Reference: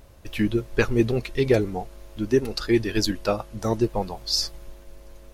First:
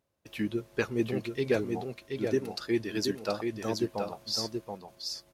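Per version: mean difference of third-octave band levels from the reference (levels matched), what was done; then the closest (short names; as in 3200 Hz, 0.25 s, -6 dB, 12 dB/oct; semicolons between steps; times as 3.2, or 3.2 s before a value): 4.5 dB: gate -40 dBFS, range -17 dB; HPF 130 Hz 12 dB/oct; on a send: echo 0.728 s -5 dB; on the sum: gain -8 dB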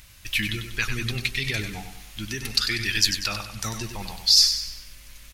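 10.0 dB: limiter -16.5 dBFS, peak gain reduction 9 dB; EQ curve 150 Hz 0 dB, 490 Hz -15 dB, 2200 Hz +13 dB; on a send: feedback echo 96 ms, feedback 45%, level -8 dB; on the sum: gain -2 dB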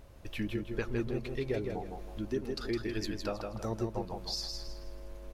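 6.0 dB: high shelf 4300 Hz -5 dB; compressor 2:1, threshold -35 dBFS, peak gain reduction 11.5 dB; on a send: feedback echo 0.16 s, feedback 32%, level -5 dB; on the sum: gain -4 dB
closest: first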